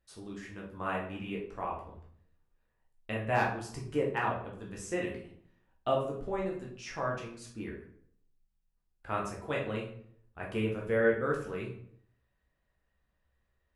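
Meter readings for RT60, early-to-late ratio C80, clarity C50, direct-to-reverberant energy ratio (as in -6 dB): 0.65 s, 9.5 dB, 5.5 dB, -3.0 dB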